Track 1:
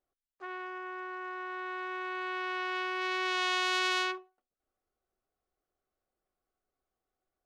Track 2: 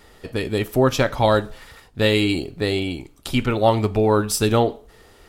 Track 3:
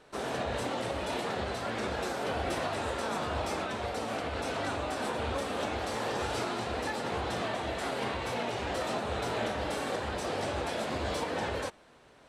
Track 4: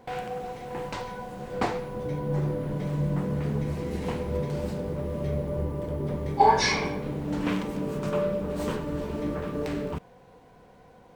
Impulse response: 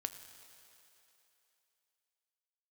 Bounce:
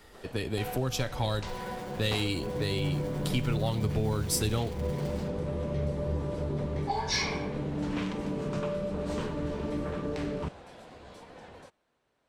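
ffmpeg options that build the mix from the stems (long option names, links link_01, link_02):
-filter_complex "[0:a]acrusher=samples=34:mix=1:aa=0.000001,acompressor=threshold=-39dB:ratio=6,adelay=1050,volume=-0.5dB[link_01];[1:a]volume=-5dB[link_02];[2:a]volume=-17.5dB[link_03];[3:a]lowpass=7100,adelay=500,volume=-0.5dB[link_04];[link_01][link_02][link_03][link_04]amix=inputs=4:normalize=0,acrossover=split=140|3000[link_05][link_06][link_07];[link_06]acompressor=threshold=-30dB:ratio=6[link_08];[link_05][link_08][link_07]amix=inputs=3:normalize=0,asoftclip=type=tanh:threshold=-14.5dB"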